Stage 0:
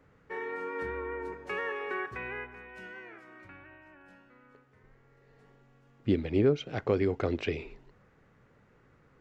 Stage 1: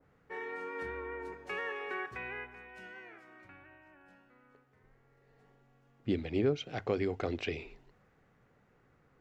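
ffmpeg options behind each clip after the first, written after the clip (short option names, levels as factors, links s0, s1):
-af "equalizer=f=740:t=o:w=0.22:g=5.5,bandreject=f=50:t=h:w=6,bandreject=f=100:t=h:w=6,adynamicequalizer=threshold=0.00398:dfrequency=1900:dqfactor=0.7:tfrequency=1900:tqfactor=0.7:attack=5:release=100:ratio=0.375:range=2.5:mode=boostabove:tftype=highshelf,volume=0.562"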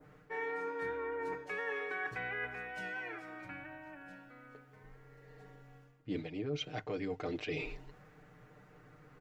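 -af "aecho=1:1:6.6:0.82,areverse,acompressor=threshold=0.00794:ratio=6,areverse,volume=2"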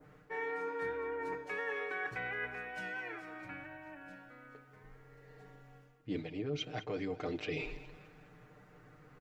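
-af "aecho=1:1:206|412|618|824:0.158|0.0761|0.0365|0.0175"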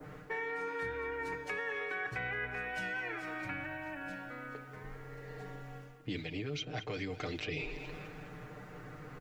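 -filter_complex "[0:a]acrossover=split=130|1700[s0][s1][s2];[s0]acompressor=threshold=0.00178:ratio=4[s3];[s1]acompressor=threshold=0.00251:ratio=4[s4];[s2]acompressor=threshold=0.00251:ratio=4[s5];[s3][s4][s5]amix=inputs=3:normalize=0,volume=3.35"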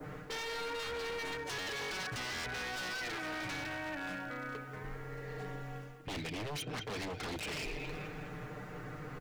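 -af "aeval=exprs='0.0126*(abs(mod(val(0)/0.0126+3,4)-2)-1)':c=same,volume=1.5"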